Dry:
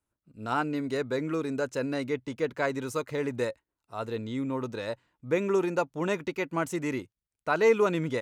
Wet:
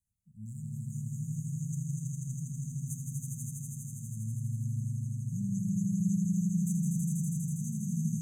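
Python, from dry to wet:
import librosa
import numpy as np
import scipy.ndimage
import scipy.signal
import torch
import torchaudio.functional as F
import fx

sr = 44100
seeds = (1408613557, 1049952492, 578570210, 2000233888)

y = fx.brickwall_bandstop(x, sr, low_hz=220.0, high_hz=6000.0)
y = fx.echo_swell(y, sr, ms=81, loudest=5, wet_db=-3)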